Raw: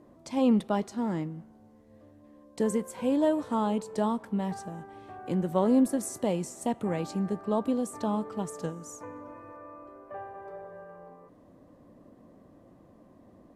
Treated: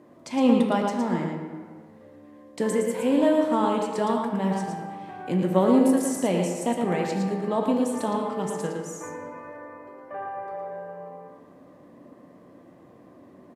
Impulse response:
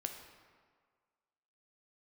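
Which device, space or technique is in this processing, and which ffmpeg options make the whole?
PA in a hall: -filter_complex "[0:a]highpass=120,equalizer=f=2100:t=o:w=1.2:g=5,aecho=1:1:113:0.562[s0];[1:a]atrim=start_sample=2205[s1];[s0][s1]afir=irnorm=-1:irlink=0,volume=1.78"

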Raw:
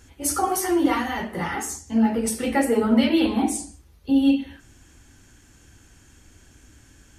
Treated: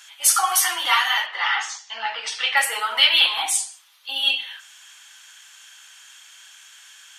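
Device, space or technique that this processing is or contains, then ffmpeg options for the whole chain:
headphones lying on a table: -filter_complex "[0:a]highpass=f=1000:w=0.5412,highpass=f=1000:w=1.3066,equalizer=f=3300:t=o:w=0.58:g=10,asettb=1/sr,asplit=3[s0][s1][s2];[s0]atrim=end=1.264[s3];[s1]atrim=start=1.26:end=2.57,asetpts=PTS-STARTPTS,afade=t=in:d=0.004:c=qsin,afade=t=out:st=1.306:d=0.004:c=qsin,lowpass=f=5200:w=0.5412,lowpass=f=5200:w=1.3066[s4];[s2]atrim=start=2.566[s5];[s3][s4]acrossfade=d=0.004:c1=hsin:c2=qsin[s6];[s6][s5]acrossfade=d=0.004:c1=qsin:c2=hsin,volume=2.66"

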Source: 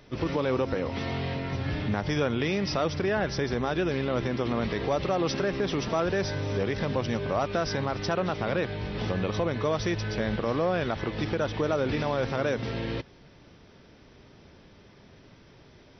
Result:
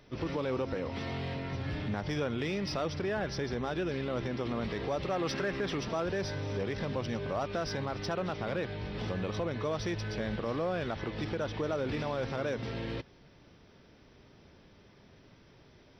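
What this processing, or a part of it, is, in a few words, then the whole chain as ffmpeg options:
parallel distortion: -filter_complex "[0:a]asettb=1/sr,asplit=3[s0][s1][s2];[s0]atrim=end=5.114[s3];[s1]atrim=start=5.11:end=5.78,asetpts=PTS-STARTPTS,afade=t=in:d=0.004:c=qsin,afade=t=out:st=0.666:d=0.004:c=qsin,equalizer=f=1700:t=o:w=1.2:g=5.5[s4];[s2]atrim=start=5.776[s5];[s3][s4]acrossfade=d=0.004:c1=hsin:c2=qsin[s6];[s6][s5]acrossfade=d=0.004:c1=qsin:c2=hsin,asplit=2[s7][s8];[s8]asoftclip=type=hard:threshold=0.0376,volume=0.447[s9];[s7][s9]amix=inputs=2:normalize=0,volume=0.398"

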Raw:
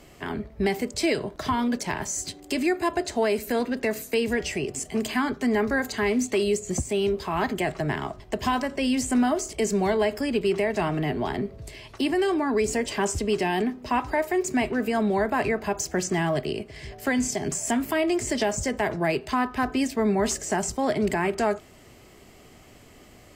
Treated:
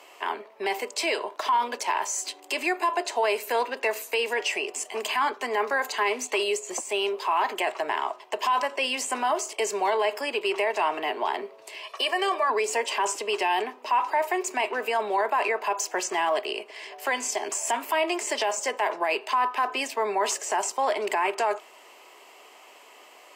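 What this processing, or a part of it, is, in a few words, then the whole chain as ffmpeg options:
laptop speaker: -filter_complex "[0:a]asettb=1/sr,asplit=3[s0][s1][s2];[s0]atrim=end=11.834[s3];[s1]atrim=start=11.83:end=12.5,asetpts=PTS-STARTPTS,afade=t=in:d=0.004:c=qsin,afade=t=out:st=0.666:d=0.004:c=qsin,aecho=1:1:1.7:0.79,atrim=end_sample=29547[s4];[s2]atrim=start=12.496[s5];[s3][s4]acrossfade=d=0.004:c1=hsin:c2=qsin[s6];[s6][s5]acrossfade=d=0.004:c1=qsin:c2=hsin,highpass=f=420:w=0.5412,highpass=f=420:w=1.3066,equalizer=f=970:t=o:w=0.47:g=12,equalizer=f=2700:t=o:w=0.49:g=7.5,alimiter=limit=0.158:level=0:latency=1:release=10"

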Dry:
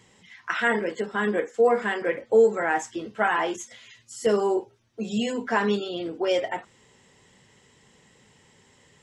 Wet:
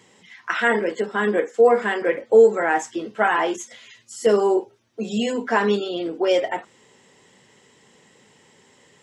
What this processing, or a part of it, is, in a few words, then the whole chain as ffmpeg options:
filter by subtraction: -filter_complex "[0:a]asplit=2[s0][s1];[s1]lowpass=330,volume=-1[s2];[s0][s2]amix=inputs=2:normalize=0,volume=1.41"

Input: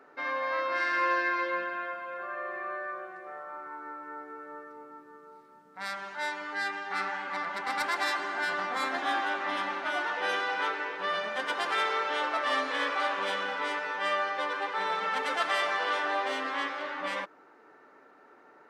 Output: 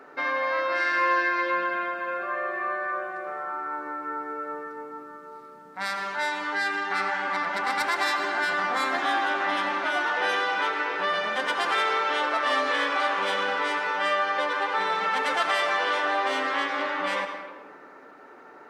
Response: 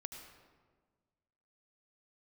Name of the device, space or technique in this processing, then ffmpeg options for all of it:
ducked reverb: -filter_complex "[0:a]asplit=3[s0][s1][s2];[1:a]atrim=start_sample=2205[s3];[s1][s3]afir=irnorm=-1:irlink=0[s4];[s2]apad=whole_len=824374[s5];[s4][s5]sidechaincompress=threshold=0.02:ratio=8:attack=16:release=162,volume=2.51[s6];[s0][s6]amix=inputs=2:normalize=0"

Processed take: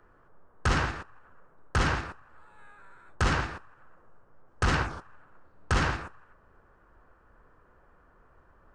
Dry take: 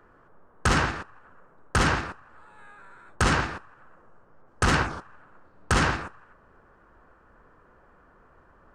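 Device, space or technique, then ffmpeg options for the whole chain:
low shelf boost with a cut just above: -filter_complex "[0:a]acrossover=split=7500[s0][s1];[s1]acompressor=threshold=0.00316:ratio=4:attack=1:release=60[s2];[s0][s2]amix=inputs=2:normalize=0,lowshelf=f=100:g=5.5,equalizer=f=220:t=o:w=0.8:g=-2.5,volume=0.596"

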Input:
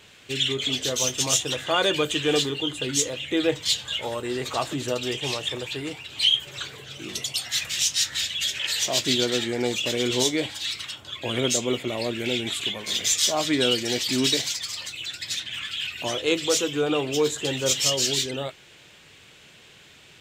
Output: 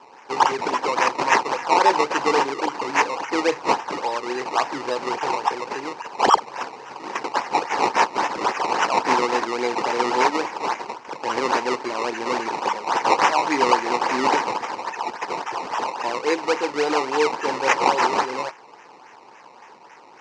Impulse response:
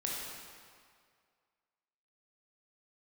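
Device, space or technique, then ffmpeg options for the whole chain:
circuit-bent sampling toy: -filter_complex "[0:a]asettb=1/sr,asplit=3[s0][s1][s2];[s0]atrim=end=16.034[s3];[s1]atrim=start=16.03:end=16.87,asetpts=PTS-STARTPTS,afade=t=in:d=0.004:c=qsin,afade=t=out:st=0.836:d=0.004:c=qsin,acrossover=split=2700[s4][s5];[s5]acompressor=threshold=0.0112:ratio=4:attack=1:release=60[s6];[s4][s6]amix=inputs=2:normalize=0[s7];[s2]atrim=start=16.866[s8];[s3][s7]acrossfade=d=0.004:c1=hsin:c2=qsin[s9];[s9][s8]acrossfade=d=0.004:c1=qsin:c2=hsin,acrusher=samples=19:mix=1:aa=0.000001:lfo=1:lforange=19:lforate=3.6,highpass=440,equalizer=f=630:t=q:w=4:g=-7,equalizer=f=910:t=q:w=4:g=9,equalizer=f=1400:t=q:w=4:g=-4,equalizer=f=3400:t=q:w=4:g=-10,lowpass=f=5800:w=0.5412,lowpass=f=5800:w=1.3066,volume=2"

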